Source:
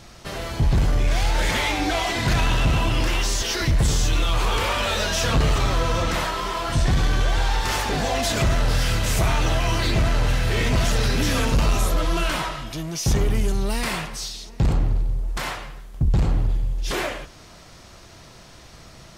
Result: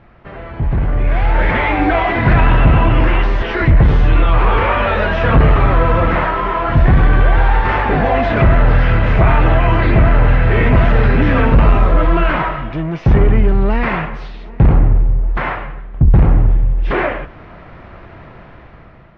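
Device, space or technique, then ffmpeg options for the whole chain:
action camera in a waterproof case: -af "lowpass=f=2.2k:w=0.5412,lowpass=f=2.2k:w=1.3066,dynaudnorm=f=450:g=5:m=11.5dB" -ar 44100 -c:a aac -b:a 96k

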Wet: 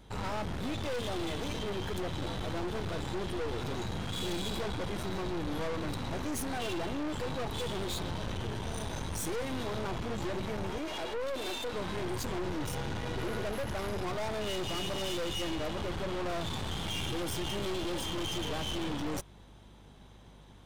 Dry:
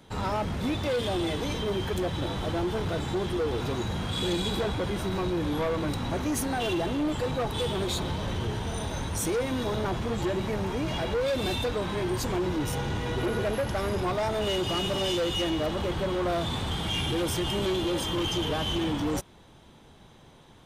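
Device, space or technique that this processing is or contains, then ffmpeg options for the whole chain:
valve amplifier with mains hum: -filter_complex "[0:a]asettb=1/sr,asplit=3[a][b][c];[a]atrim=end=10.784[d];[b]atrim=start=10.78:end=11.73,asetpts=PTS-STARTPTS,afade=t=in:d=0.004:c=qsin,afade=t=out:st=0.946:d=0.004:c=qsin,highpass=f=290:w=0.5412,highpass=f=290:w=1.3066[e];[c]atrim=start=11.726[f];[d][e]acrossfade=d=0.004:c1=hsin:c2=qsin[g];[g][f]acrossfade=d=0.004:c1=qsin:c2=hsin,aeval=exprs='(tanh(44.7*val(0)+0.7)-tanh(0.7))/44.7':c=same,aeval=exprs='val(0)+0.00178*(sin(2*PI*50*n/s)+sin(2*PI*2*50*n/s)/2+sin(2*PI*3*50*n/s)/3+sin(2*PI*4*50*n/s)/4+sin(2*PI*5*50*n/s)/5)':c=same"

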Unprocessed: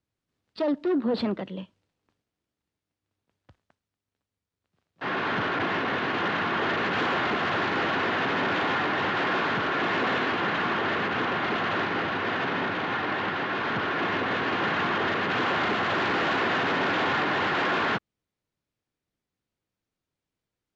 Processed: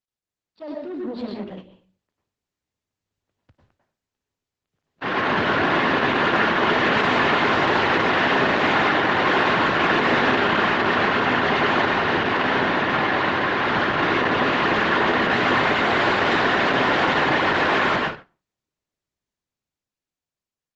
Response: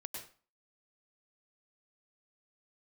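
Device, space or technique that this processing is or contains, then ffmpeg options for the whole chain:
speakerphone in a meeting room: -filter_complex "[1:a]atrim=start_sample=2205[a];[0:a][a]afir=irnorm=-1:irlink=0,dynaudnorm=f=480:g=9:m=16dB,agate=range=-7dB:threshold=-32dB:ratio=16:detection=peak,volume=-4.5dB" -ar 48000 -c:a libopus -b:a 12k

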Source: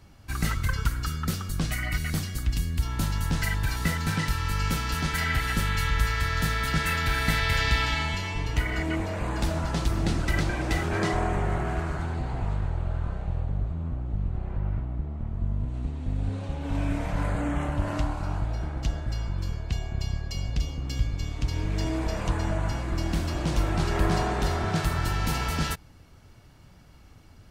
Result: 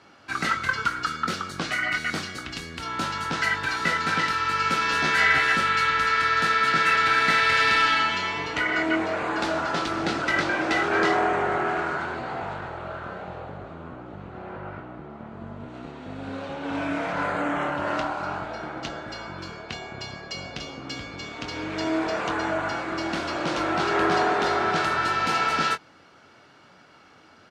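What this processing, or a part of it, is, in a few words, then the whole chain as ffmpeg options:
intercom: -filter_complex "[0:a]highpass=330,lowpass=4.7k,equalizer=f=1.4k:t=o:w=0.3:g=6.5,asoftclip=type=tanh:threshold=-17.5dB,asplit=2[a][b];[b]adelay=22,volume=-9.5dB[c];[a][c]amix=inputs=2:normalize=0,asettb=1/sr,asplit=3[d][e][f];[d]atrim=end=4.804[g];[e]atrim=start=4.8:end=5.57,asetpts=PTS-STARTPTS,afade=t=in:d=0.004:c=qsin,afade=t=out:st=0.766:d=0.004:c=qsin,asplit=2[h][i];[i]adelay=14,volume=-2.5dB[j];[h][j]amix=inputs=2:normalize=0,atrim=end_sample=33957[k];[f]atrim=start=5.566[l];[g][k]acrossfade=d=0.004:c1=hsin:c2=qsin[m];[m][l]acrossfade=d=0.004:c1=qsin:c2=hsin,volume=6.5dB"

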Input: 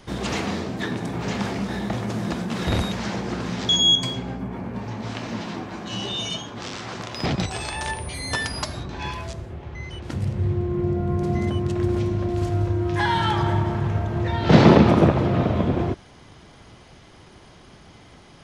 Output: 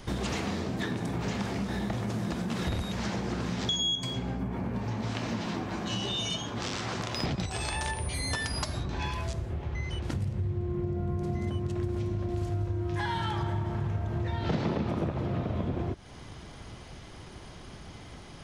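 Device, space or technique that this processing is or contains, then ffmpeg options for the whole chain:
ASMR close-microphone chain: -af "lowshelf=f=100:g=7,acompressor=threshold=-29dB:ratio=5,highshelf=f=7.6k:g=4"

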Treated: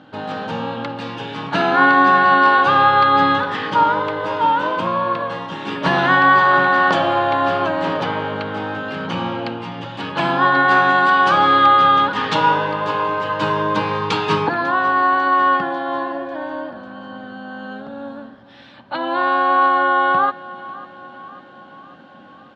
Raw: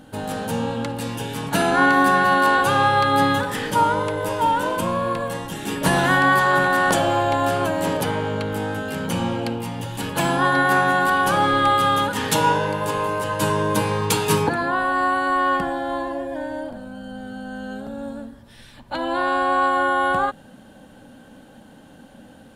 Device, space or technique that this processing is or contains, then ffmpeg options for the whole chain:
kitchen radio: -filter_complex "[0:a]highpass=160,equalizer=f=230:t=q:w=4:g=-5,equalizer=f=470:t=q:w=4:g=-4,equalizer=f=1.2k:t=q:w=4:g=5,lowpass=f=4.3k:w=0.5412,lowpass=f=4.3k:w=1.3066,asettb=1/sr,asplit=3[a][b][c];[a]atrim=end=10.684[d];[b]atrim=start=10.68:end=11.66,asetpts=PTS-STARTPTS,afade=t=in:d=0.004:c=qsin,afade=t=out:st=0.976:d=0.004:c=qsin,highshelf=f=5.4k:g=10[e];[c]atrim=start=11.656[f];[d][e]acrossfade=d=0.004:c1=hsin:c2=qsin[g];[g][f]acrossfade=d=0.004:c1=qsin:c2=hsin,aecho=1:1:546|1092|1638|2184|2730:0.112|0.0651|0.0377|0.0219|0.0127,volume=2.5dB"

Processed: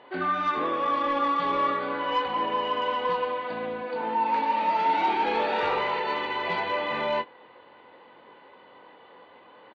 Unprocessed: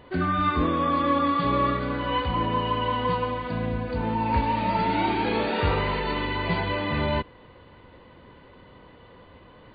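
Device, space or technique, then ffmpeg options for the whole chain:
intercom: -filter_complex "[0:a]highpass=400,lowpass=4.1k,equalizer=f=830:t=o:w=0.23:g=7,asoftclip=type=tanh:threshold=-16.5dB,asplit=2[a][b];[b]adelay=22,volume=-8.5dB[c];[a][c]amix=inputs=2:normalize=0,asettb=1/sr,asplit=3[d][e][f];[d]atrim=end=3.824[g];[e]atrim=start=3.82:end=4.97,asetpts=PTS-STARTPTS,afade=t=in:d=0.004:c=qsin,afade=t=out:st=1.146:d=0.004:c=qsin,highpass=170[h];[f]atrim=start=4.966[i];[g][h]acrossfade=d=0.004:c1=hsin:c2=qsin[j];[j][i]acrossfade=d=0.004:c1=qsin:c2=hsin"

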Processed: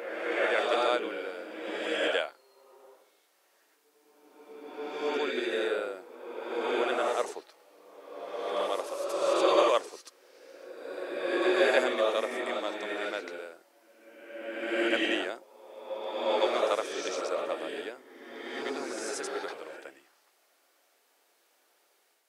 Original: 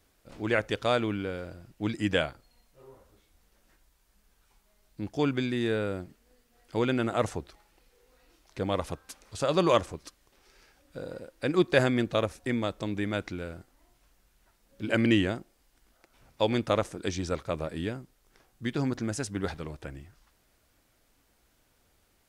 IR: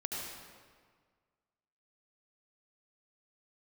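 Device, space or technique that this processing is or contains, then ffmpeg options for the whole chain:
ghost voice: -filter_complex "[0:a]areverse[a];[1:a]atrim=start_sample=2205[b];[a][b]afir=irnorm=-1:irlink=0,areverse,highpass=f=400:w=0.5412,highpass=f=400:w=1.3066"

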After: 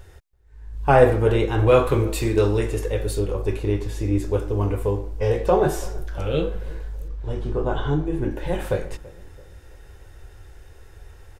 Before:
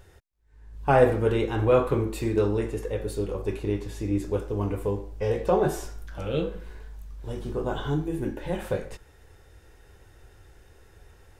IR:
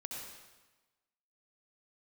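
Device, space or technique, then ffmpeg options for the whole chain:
low shelf boost with a cut just above: -filter_complex "[0:a]asettb=1/sr,asplit=3[a][b][c];[a]atrim=end=7.084[d];[b]atrim=start=7.08:end=8.31,asetpts=PTS-STARTPTS,afade=t=in:d=0.004:c=qsin,afade=t=out:st=1.226:d=0.004:c=qsin,aemphasis=mode=reproduction:type=50fm[e];[c]atrim=start=8.306[f];[d][e]acrossfade=d=0.004:c1=hsin:c2=qsin[g];[g][f]acrossfade=d=0.004:c1=qsin:c2=hsin,lowshelf=f=90:g=6.5,equalizer=f=200:t=o:w=0.87:g=-5,asplit=2[h][i];[i]adelay=333,lowpass=f=1.1k:p=1,volume=-20dB,asplit=2[j][k];[k]adelay=333,lowpass=f=1.1k:p=1,volume=0.49,asplit=2[l][m];[m]adelay=333,lowpass=f=1.1k:p=1,volume=0.49,asplit=2[n][o];[o]adelay=333,lowpass=f=1.1k:p=1,volume=0.49[p];[h][j][l][n][p]amix=inputs=5:normalize=0,asplit=3[q][r][s];[q]afade=t=out:st=1.66:d=0.02[t];[r]adynamicequalizer=threshold=0.01:dfrequency=2000:dqfactor=0.7:tfrequency=2000:tqfactor=0.7:attack=5:release=100:ratio=0.375:range=3:mode=boostabove:tftype=highshelf,afade=t=in:st=1.66:d=0.02,afade=t=out:st=3.19:d=0.02[u];[s]afade=t=in:st=3.19:d=0.02[v];[t][u][v]amix=inputs=3:normalize=0,volume=4.5dB"

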